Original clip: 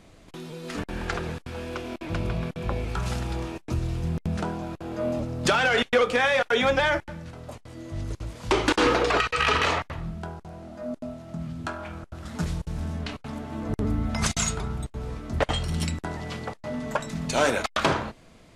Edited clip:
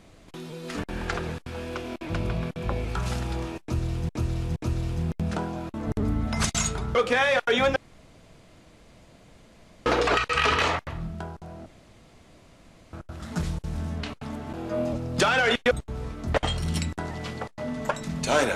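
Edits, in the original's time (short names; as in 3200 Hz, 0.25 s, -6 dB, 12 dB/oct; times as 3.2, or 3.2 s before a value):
3.62–4.09 loop, 3 plays
4.8–5.98 swap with 13.56–14.77
6.79–8.89 room tone
10.69–11.96 room tone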